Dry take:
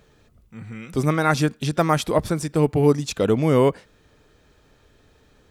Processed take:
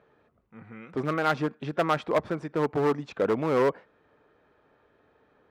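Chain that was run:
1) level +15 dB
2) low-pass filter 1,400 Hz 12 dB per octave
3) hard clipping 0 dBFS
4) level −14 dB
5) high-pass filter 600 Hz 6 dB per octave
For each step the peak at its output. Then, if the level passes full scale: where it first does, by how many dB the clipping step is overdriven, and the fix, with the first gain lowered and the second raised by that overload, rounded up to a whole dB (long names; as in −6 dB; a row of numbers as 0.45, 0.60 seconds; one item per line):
+10.0, +9.5, 0.0, −14.0, −10.0 dBFS
step 1, 9.5 dB
step 1 +5 dB, step 4 −4 dB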